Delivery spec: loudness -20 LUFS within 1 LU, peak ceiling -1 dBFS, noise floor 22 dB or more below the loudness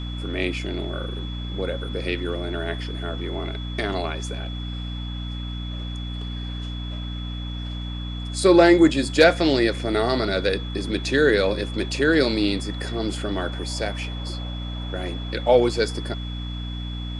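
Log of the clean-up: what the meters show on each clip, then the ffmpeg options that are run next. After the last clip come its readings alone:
hum 60 Hz; harmonics up to 300 Hz; hum level -28 dBFS; steady tone 3400 Hz; tone level -38 dBFS; loudness -24.0 LUFS; peak -4.0 dBFS; loudness target -20.0 LUFS
-> -af "bandreject=f=60:t=h:w=4,bandreject=f=120:t=h:w=4,bandreject=f=180:t=h:w=4,bandreject=f=240:t=h:w=4,bandreject=f=300:t=h:w=4"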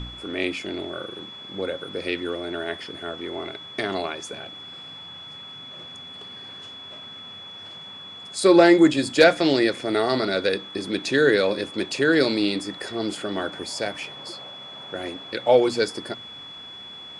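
hum none; steady tone 3400 Hz; tone level -38 dBFS
-> -af "bandreject=f=3.4k:w=30"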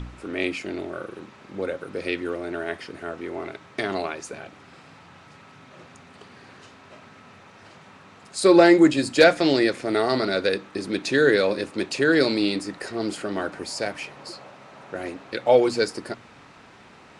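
steady tone none; loudness -22.5 LUFS; peak -4.0 dBFS; loudness target -20.0 LUFS
-> -af "volume=2.5dB"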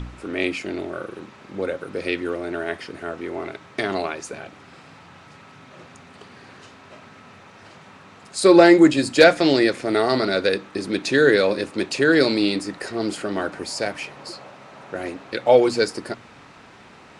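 loudness -20.0 LUFS; peak -1.5 dBFS; noise floor -47 dBFS

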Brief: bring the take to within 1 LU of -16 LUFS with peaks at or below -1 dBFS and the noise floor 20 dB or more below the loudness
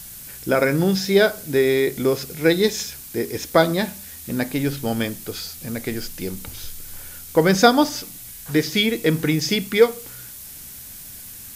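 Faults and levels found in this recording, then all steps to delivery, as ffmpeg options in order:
noise floor -39 dBFS; noise floor target -41 dBFS; loudness -21.0 LUFS; peak -2.0 dBFS; loudness target -16.0 LUFS
-> -af "afftdn=nr=6:nf=-39"
-af "volume=5dB,alimiter=limit=-1dB:level=0:latency=1"

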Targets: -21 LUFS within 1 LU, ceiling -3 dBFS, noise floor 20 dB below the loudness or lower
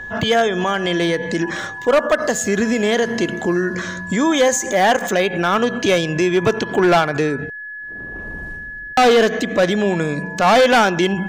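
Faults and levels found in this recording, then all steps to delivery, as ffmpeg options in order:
steady tone 1700 Hz; tone level -29 dBFS; loudness -17.0 LUFS; peak -7.0 dBFS; loudness target -21.0 LUFS
-> -af "bandreject=f=1.7k:w=30"
-af "volume=-4dB"

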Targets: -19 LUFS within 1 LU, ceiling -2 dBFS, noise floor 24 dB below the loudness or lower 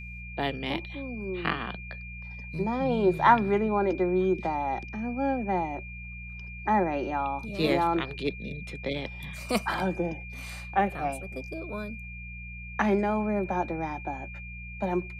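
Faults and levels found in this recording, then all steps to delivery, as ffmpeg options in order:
hum 60 Hz; harmonics up to 180 Hz; hum level -40 dBFS; steady tone 2400 Hz; tone level -42 dBFS; loudness -29.0 LUFS; peak -7.5 dBFS; loudness target -19.0 LUFS
-> -af "bandreject=f=60:t=h:w=4,bandreject=f=120:t=h:w=4,bandreject=f=180:t=h:w=4"
-af "bandreject=f=2.4k:w=30"
-af "volume=10dB,alimiter=limit=-2dB:level=0:latency=1"

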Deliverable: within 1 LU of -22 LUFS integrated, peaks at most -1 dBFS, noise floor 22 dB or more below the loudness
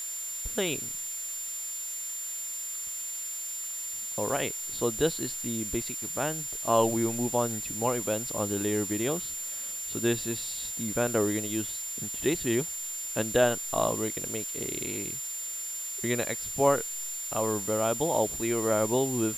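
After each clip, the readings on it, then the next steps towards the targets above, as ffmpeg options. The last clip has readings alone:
steady tone 7200 Hz; tone level -34 dBFS; noise floor -36 dBFS; noise floor target -51 dBFS; loudness -29.0 LUFS; peak -10.0 dBFS; loudness target -22.0 LUFS
-> -af "bandreject=f=7.2k:w=30"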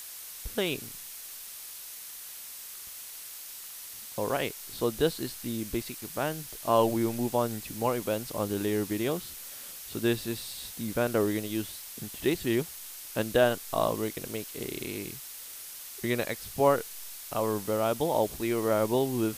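steady tone none; noise floor -44 dBFS; noise floor target -53 dBFS
-> -af "afftdn=nr=9:nf=-44"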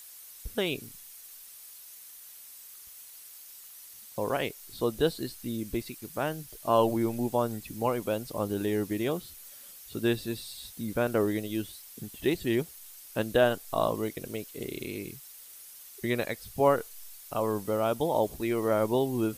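noise floor -49 dBFS; noise floor target -53 dBFS
-> -af "afftdn=nr=6:nf=-49"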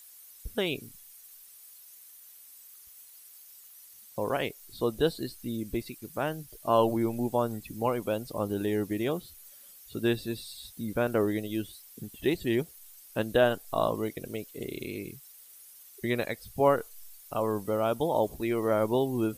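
noise floor -53 dBFS; loudness -30.5 LUFS; peak -10.5 dBFS; loudness target -22.0 LUFS
-> -af "volume=8.5dB"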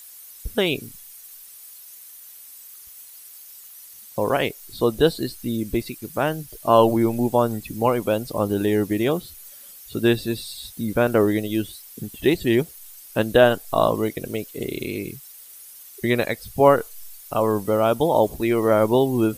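loudness -22.0 LUFS; peak -2.0 dBFS; noise floor -44 dBFS

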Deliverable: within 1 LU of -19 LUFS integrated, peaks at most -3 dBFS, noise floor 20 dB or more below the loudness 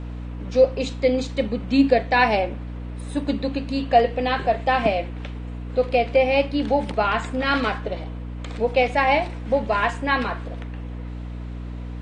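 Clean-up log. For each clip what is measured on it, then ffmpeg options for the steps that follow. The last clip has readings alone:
hum 60 Hz; harmonics up to 300 Hz; hum level -30 dBFS; loudness -22.0 LUFS; peak -4.5 dBFS; loudness target -19.0 LUFS
-> -af "bandreject=f=60:t=h:w=6,bandreject=f=120:t=h:w=6,bandreject=f=180:t=h:w=6,bandreject=f=240:t=h:w=6,bandreject=f=300:t=h:w=6"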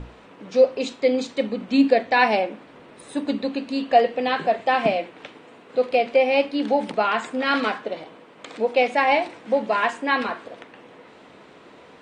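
hum none; loudness -22.0 LUFS; peak -4.5 dBFS; loudness target -19.0 LUFS
-> -af "volume=3dB,alimiter=limit=-3dB:level=0:latency=1"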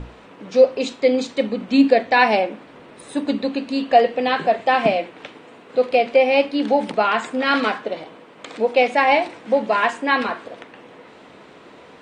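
loudness -19.0 LUFS; peak -3.0 dBFS; noise floor -45 dBFS

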